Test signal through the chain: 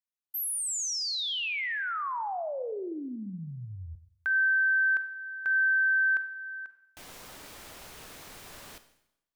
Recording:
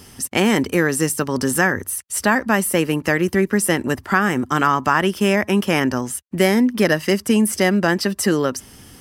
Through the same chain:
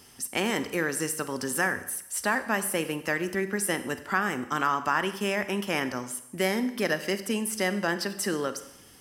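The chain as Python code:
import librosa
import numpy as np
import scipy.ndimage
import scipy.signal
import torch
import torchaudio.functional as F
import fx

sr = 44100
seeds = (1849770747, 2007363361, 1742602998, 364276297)

y = fx.low_shelf(x, sr, hz=280.0, db=-9.0)
y = fx.rev_schroeder(y, sr, rt60_s=0.81, comb_ms=32, drr_db=11.0)
y = y * 10.0 ** (-8.0 / 20.0)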